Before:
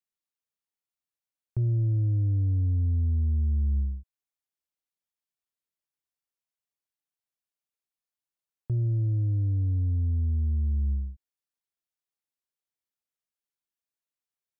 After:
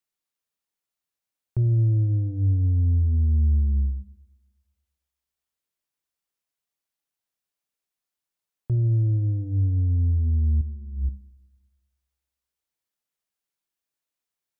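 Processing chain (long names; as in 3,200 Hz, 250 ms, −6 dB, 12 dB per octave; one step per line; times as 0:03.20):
hum removal 50.33 Hz, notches 5
0:10.61–0:11.09: compressor whose output falls as the input rises −32 dBFS, ratio −0.5
four-comb reverb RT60 1.4 s, combs from 27 ms, DRR 17.5 dB
level +4.5 dB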